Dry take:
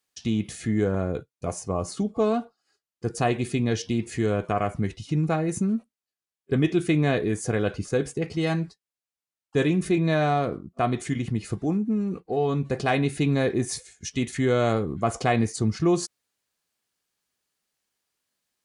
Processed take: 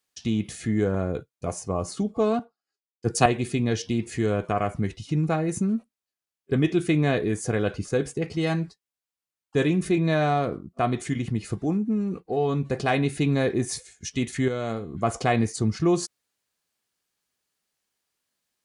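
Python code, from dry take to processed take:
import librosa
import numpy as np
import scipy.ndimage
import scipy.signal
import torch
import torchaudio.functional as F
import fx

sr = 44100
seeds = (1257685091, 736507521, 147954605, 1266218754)

y = fx.band_widen(x, sr, depth_pct=100, at=(2.39, 3.26))
y = fx.comb_fb(y, sr, f0_hz=230.0, decay_s=0.53, harmonics='all', damping=0.0, mix_pct=60, at=(14.48, 14.94))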